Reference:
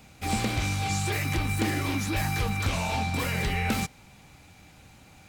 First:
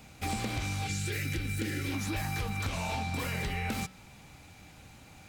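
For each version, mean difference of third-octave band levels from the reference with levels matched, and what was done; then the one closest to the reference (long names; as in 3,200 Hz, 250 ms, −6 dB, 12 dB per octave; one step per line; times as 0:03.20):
2.5 dB: gain on a spectral selection 0:00.87–0:01.92, 560–1,300 Hz −14 dB
downward compressor, threshold −30 dBFS, peak gain reduction 8 dB
hum removal 187.4 Hz, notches 27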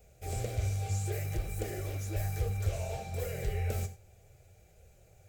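7.0 dB: drawn EQ curve 100 Hz 0 dB, 270 Hz −25 dB, 400 Hz 0 dB, 660 Hz −2 dB, 950 Hz −23 dB, 1,500 Hz −14 dB, 4,100 Hz −17 dB, 7,200 Hz −6 dB, 10,000 Hz −9 dB, 15,000 Hz −2 dB
flanger 0.62 Hz, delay 3.9 ms, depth 8 ms, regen −41%
reverb whose tail is shaped and stops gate 120 ms flat, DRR 10.5 dB
level +2.5 dB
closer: first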